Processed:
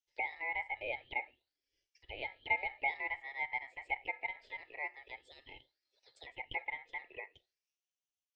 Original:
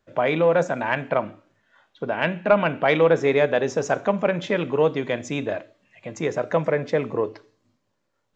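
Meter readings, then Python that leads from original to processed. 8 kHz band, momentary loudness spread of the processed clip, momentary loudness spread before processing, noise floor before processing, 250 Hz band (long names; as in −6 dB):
can't be measured, 17 LU, 11 LU, −74 dBFS, −36.0 dB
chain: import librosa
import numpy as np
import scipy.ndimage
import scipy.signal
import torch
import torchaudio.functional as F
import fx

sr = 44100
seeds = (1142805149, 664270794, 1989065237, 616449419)

y = fx.auto_wah(x, sr, base_hz=690.0, top_hz=4600.0, q=6.1, full_db=-19.0, direction='down')
y = y * np.sin(2.0 * np.pi * 1500.0 * np.arange(len(y)) / sr)
y = fx.fixed_phaser(y, sr, hz=460.0, stages=4)
y = F.gain(torch.from_numpy(y), -2.0).numpy()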